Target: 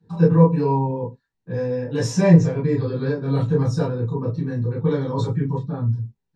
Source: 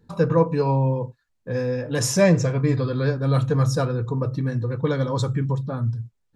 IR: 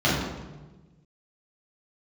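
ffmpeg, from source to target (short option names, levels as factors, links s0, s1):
-filter_complex "[1:a]atrim=start_sample=2205,atrim=end_sample=3087,asetrate=57330,aresample=44100[s0];[0:a][s0]afir=irnorm=-1:irlink=0,volume=0.141"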